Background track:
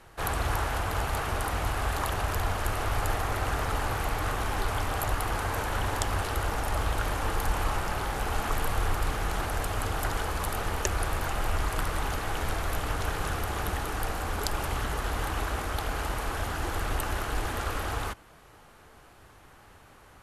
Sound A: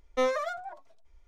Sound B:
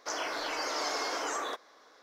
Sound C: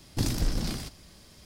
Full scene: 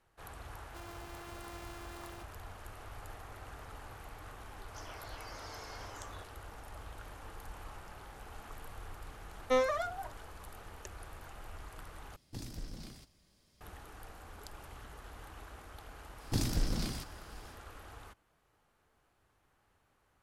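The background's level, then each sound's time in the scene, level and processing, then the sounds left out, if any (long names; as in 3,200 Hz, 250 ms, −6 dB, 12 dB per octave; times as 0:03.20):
background track −19.5 dB
0:00.68: mix in B −17 dB + samples sorted by size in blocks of 128 samples
0:04.68: mix in B −16 dB
0:09.33: mix in A −2 dB
0:12.16: overwrite with C −16.5 dB
0:16.15: mix in C −4.5 dB, fades 0.10 s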